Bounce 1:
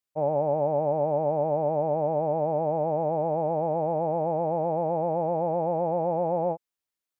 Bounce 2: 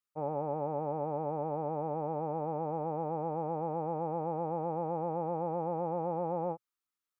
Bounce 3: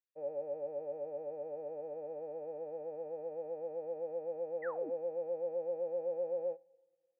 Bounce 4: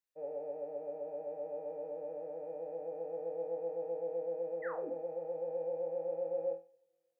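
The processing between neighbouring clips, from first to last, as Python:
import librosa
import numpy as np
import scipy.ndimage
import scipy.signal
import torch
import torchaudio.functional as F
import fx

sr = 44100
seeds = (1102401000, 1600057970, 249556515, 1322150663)

y1 = fx.graphic_eq_31(x, sr, hz=(125, 630, 1250), db=(-7, -11, 11))
y1 = y1 * librosa.db_to_amplitude(-5.0)
y2 = fx.vowel_filter(y1, sr, vowel='e')
y2 = fx.spec_paint(y2, sr, seeds[0], shape='fall', start_s=4.62, length_s=0.28, low_hz=250.0, high_hz=2100.0, level_db=-47.0)
y2 = fx.rev_double_slope(y2, sr, seeds[1], early_s=0.34, late_s=1.7, knee_db=-18, drr_db=15.5)
y2 = y2 * librosa.db_to_amplitude(2.0)
y3 = fx.room_flutter(y2, sr, wall_m=4.1, rt60_s=0.31)
y3 = y3 * librosa.db_to_amplitude(-1.0)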